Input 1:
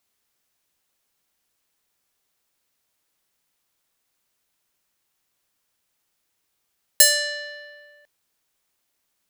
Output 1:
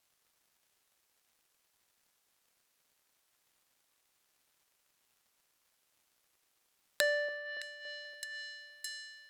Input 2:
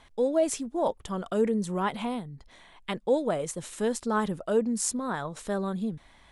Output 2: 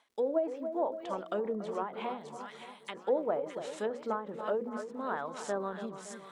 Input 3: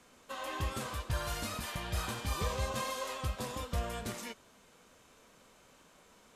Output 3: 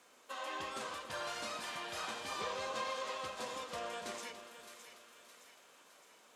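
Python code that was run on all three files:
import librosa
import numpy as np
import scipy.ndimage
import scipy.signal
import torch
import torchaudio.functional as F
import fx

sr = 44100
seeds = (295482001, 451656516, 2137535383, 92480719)

p1 = scipy.signal.sosfilt(scipy.signal.butter(2, 350.0, 'highpass', fs=sr, output='sos'), x)
p2 = fx.hum_notches(p1, sr, base_hz=60, count=9)
p3 = p2 + fx.echo_split(p2, sr, split_hz=1300.0, low_ms=283, high_ms=614, feedback_pct=52, wet_db=-10.5, dry=0)
p4 = fx.env_lowpass_down(p3, sr, base_hz=1200.0, full_db=-26.0)
p5 = fx.dmg_crackle(p4, sr, seeds[0], per_s=220.0, level_db=-60.0)
p6 = fx.end_taper(p5, sr, db_per_s=120.0)
y = p6 * librosa.db_to_amplitude(-1.5)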